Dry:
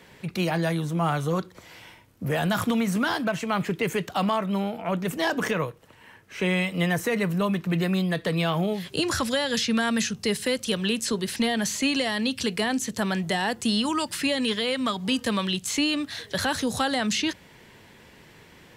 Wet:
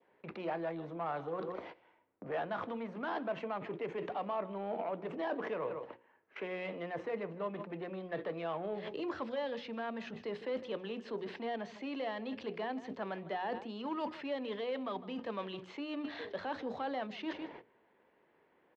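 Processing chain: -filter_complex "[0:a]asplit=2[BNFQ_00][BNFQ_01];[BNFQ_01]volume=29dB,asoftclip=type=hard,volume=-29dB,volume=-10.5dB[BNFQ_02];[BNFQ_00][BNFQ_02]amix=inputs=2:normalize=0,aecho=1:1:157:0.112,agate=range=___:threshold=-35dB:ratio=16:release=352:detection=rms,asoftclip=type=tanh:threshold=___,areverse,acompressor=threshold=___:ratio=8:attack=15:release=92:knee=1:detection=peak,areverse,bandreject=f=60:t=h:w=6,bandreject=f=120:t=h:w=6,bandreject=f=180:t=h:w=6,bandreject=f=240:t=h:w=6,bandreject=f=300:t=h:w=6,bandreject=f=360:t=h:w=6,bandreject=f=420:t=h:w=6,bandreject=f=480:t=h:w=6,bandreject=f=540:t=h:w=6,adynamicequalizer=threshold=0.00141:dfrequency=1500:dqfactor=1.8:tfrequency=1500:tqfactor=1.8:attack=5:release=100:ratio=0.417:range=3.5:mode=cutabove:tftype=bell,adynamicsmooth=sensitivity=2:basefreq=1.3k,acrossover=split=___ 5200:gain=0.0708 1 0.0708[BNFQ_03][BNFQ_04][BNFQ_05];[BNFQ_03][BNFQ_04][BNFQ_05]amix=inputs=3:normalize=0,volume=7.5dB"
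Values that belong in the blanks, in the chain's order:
-21dB, -13.5dB, -39dB, 300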